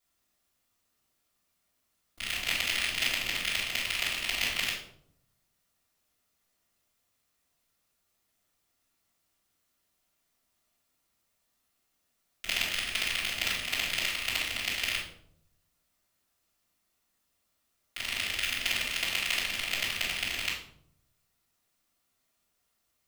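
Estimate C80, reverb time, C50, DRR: 8.5 dB, 0.70 s, 4.5 dB, −9.0 dB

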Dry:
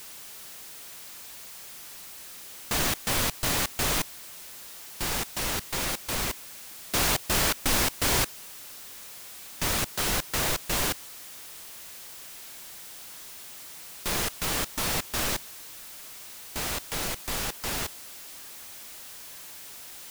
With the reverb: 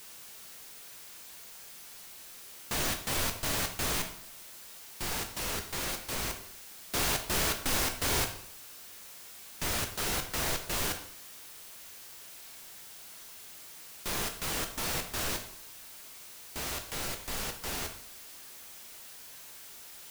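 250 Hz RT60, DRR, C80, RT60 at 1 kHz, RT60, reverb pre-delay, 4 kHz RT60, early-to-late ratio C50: 0.70 s, 4.5 dB, 12.5 dB, 0.65 s, 0.65 s, 8 ms, 0.50 s, 9.5 dB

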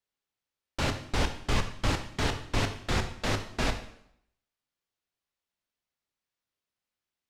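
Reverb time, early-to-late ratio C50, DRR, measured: 0.75 s, 9.5 dB, 6.0 dB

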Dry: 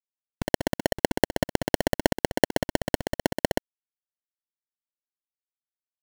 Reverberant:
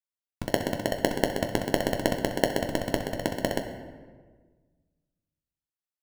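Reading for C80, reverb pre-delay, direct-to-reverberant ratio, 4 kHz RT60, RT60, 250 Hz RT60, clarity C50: 9.5 dB, 9 ms, 4.0 dB, 0.90 s, 1.5 s, 1.8 s, 8.0 dB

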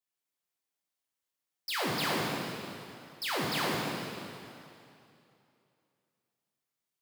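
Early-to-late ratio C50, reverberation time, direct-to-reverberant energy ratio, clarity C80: −1.5 dB, 2.7 s, −4.5 dB, 0.0 dB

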